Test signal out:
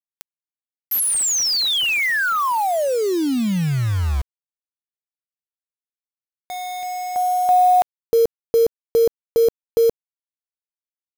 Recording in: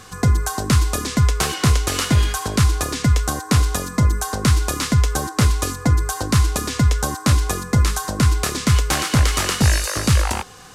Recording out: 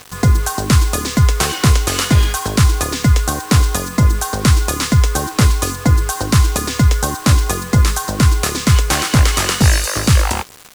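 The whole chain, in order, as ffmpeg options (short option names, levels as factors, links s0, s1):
-af "acrusher=bits=5:mix=0:aa=0.000001,volume=1.58"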